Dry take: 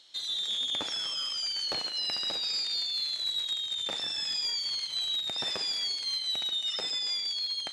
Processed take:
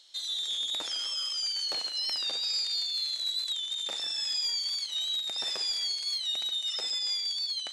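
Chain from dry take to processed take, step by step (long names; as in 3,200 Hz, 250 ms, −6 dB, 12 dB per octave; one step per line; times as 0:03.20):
bass and treble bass −10 dB, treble +7 dB
wow of a warped record 45 rpm, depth 100 cents
level −3.5 dB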